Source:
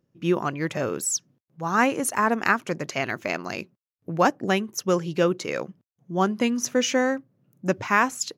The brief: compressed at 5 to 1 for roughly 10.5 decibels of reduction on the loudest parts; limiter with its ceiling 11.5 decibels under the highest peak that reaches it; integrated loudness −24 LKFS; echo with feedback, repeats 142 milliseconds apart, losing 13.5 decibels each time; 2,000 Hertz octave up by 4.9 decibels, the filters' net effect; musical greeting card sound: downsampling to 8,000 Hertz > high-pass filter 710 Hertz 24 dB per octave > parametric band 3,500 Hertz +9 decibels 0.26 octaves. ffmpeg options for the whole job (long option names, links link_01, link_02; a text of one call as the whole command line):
ffmpeg -i in.wav -af "equalizer=frequency=2000:width_type=o:gain=6,acompressor=threshold=-24dB:ratio=5,alimiter=limit=-21dB:level=0:latency=1,aecho=1:1:142|284:0.211|0.0444,aresample=8000,aresample=44100,highpass=frequency=710:width=0.5412,highpass=frequency=710:width=1.3066,equalizer=frequency=3500:width_type=o:width=0.26:gain=9,volume=11.5dB" out.wav